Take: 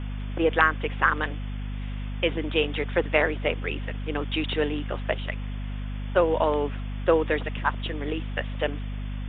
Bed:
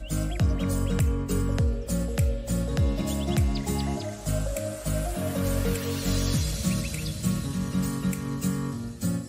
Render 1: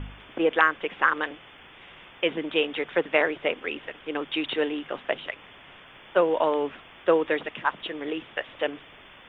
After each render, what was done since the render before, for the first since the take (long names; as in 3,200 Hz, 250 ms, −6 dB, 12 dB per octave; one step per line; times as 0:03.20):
hum removal 50 Hz, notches 5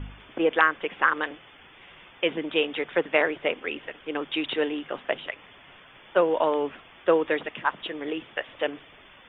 broadband denoise 6 dB, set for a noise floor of −50 dBFS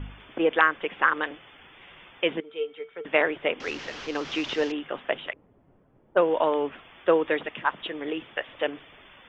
0:02.40–0:03.05: tuned comb filter 450 Hz, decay 0.16 s, harmonics odd, mix 90%
0:03.60–0:04.72: linear delta modulator 32 kbit/s, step −33 dBFS
0:05.33–0:06.72: low-pass that shuts in the quiet parts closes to 340 Hz, open at −18.5 dBFS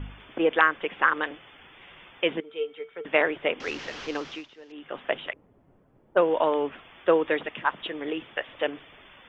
0:04.11–0:05.05: duck −22.5 dB, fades 0.37 s linear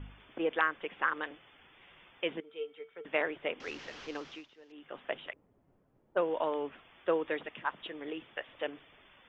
level −9 dB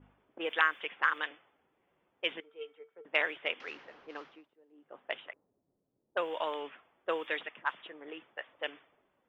low-pass that shuts in the quiet parts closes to 370 Hz, open at −28 dBFS
spectral tilt +4.5 dB per octave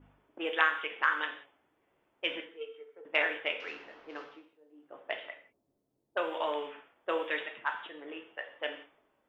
reverb whose tail is shaped and stops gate 210 ms falling, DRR 4 dB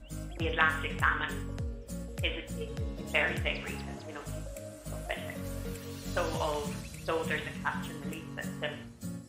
mix in bed −12.5 dB